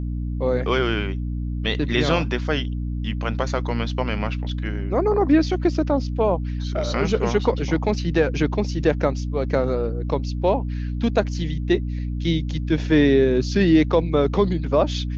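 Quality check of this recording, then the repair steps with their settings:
hum 60 Hz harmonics 5 -26 dBFS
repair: de-hum 60 Hz, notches 5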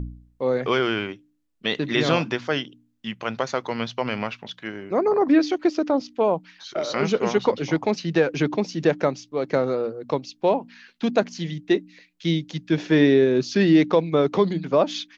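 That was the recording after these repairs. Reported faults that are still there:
none

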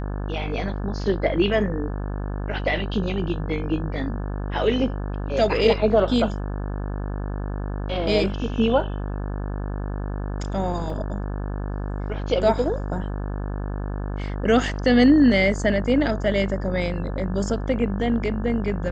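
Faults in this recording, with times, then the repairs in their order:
buzz 50 Hz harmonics 35 -28 dBFS
10.9 gap 2.5 ms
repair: de-hum 50 Hz, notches 35; interpolate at 10.9, 2.5 ms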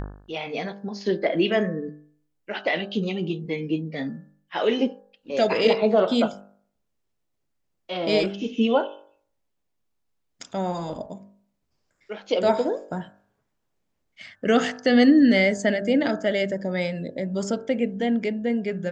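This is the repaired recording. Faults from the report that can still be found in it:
none

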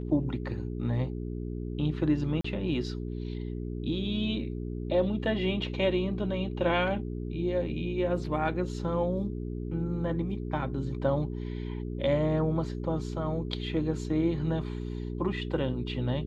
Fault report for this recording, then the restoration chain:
hum 60 Hz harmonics 7 -35 dBFS
2.41–2.44 gap 34 ms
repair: de-hum 60 Hz, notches 7; interpolate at 2.41, 34 ms

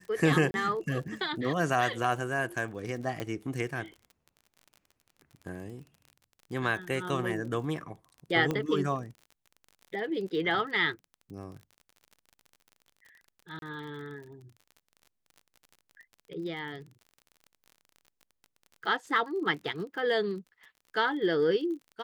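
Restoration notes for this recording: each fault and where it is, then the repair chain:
crackle 39/s -41 dBFS
0.51–0.54 gap 31 ms
3.2 pop -20 dBFS
8.51 pop -17 dBFS
13.59–13.62 gap 32 ms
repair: de-click; interpolate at 0.51, 31 ms; interpolate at 13.59, 32 ms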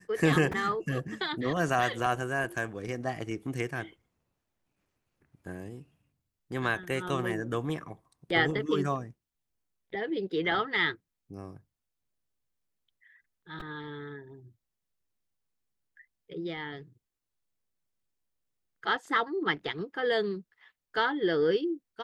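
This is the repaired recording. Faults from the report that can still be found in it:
none

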